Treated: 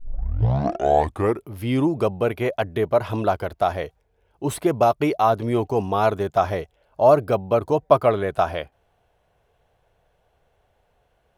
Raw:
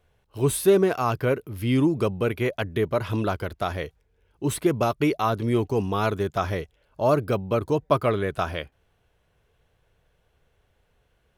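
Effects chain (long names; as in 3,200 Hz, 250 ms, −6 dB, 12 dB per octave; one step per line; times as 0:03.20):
turntable start at the beginning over 1.54 s
parametric band 720 Hz +10.5 dB 0.98 octaves
level −1 dB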